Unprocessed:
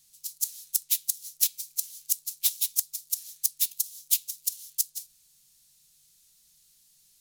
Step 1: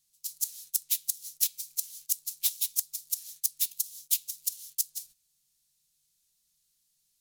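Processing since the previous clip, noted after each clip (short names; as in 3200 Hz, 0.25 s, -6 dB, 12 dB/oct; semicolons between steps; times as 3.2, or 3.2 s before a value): gate -49 dBFS, range -12 dB; in parallel at -2.5 dB: compressor, threshold -32 dBFS, peak gain reduction 14 dB; on the sum: gain -4.5 dB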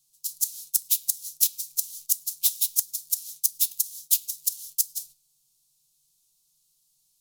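fixed phaser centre 350 Hz, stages 8; reverb, pre-delay 8 ms, DRR 15 dB; gain +5.5 dB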